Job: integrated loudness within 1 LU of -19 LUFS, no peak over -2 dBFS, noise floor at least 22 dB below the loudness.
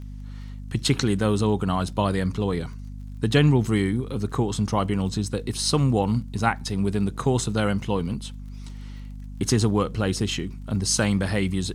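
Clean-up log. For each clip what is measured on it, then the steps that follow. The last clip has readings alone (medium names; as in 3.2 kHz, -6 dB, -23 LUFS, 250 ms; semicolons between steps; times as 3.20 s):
tick rate 26 per s; hum 50 Hz; highest harmonic 250 Hz; hum level -33 dBFS; loudness -24.0 LUFS; peak level -6.0 dBFS; loudness target -19.0 LUFS
-> de-click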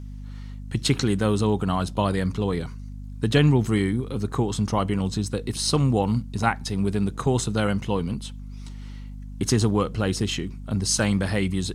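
tick rate 0.17 per s; hum 50 Hz; highest harmonic 250 Hz; hum level -33 dBFS
-> hum notches 50/100/150/200/250 Hz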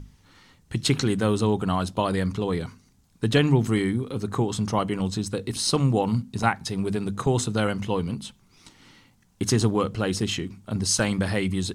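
hum not found; loudness -25.0 LUFS; peak level -7.0 dBFS; loudness target -19.0 LUFS
-> trim +6 dB; peak limiter -2 dBFS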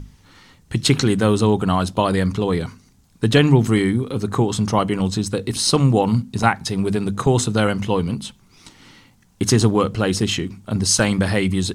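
loudness -19.0 LUFS; peak level -2.0 dBFS; noise floor -54 dBFS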